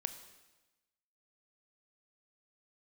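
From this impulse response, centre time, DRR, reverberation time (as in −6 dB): 12 ms, 9.0 dB, 1.1 s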